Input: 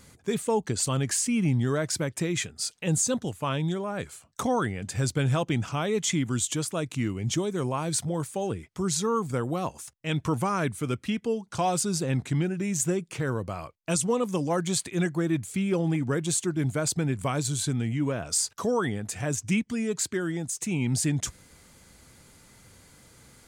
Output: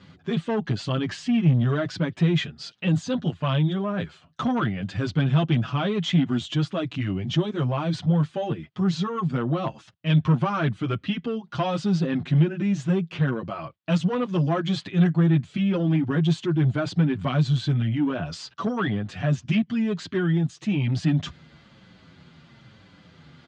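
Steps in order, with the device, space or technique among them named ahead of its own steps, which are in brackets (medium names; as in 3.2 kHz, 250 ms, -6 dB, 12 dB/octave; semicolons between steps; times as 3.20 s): barber-pole flanger into a guitar amplifier (endless flanger 7.6 ms -1 Hz; saturation -23.5 dBFS, distortion -17 dB; cabinet simulation 94–3900 Hz, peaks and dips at 160 Hz +7 dB, 460 Hz -7 dB, 900 Hz -4 dB, 2.2 kHz -5 dB, 3.1 kHz +3 dB); trim +8 dB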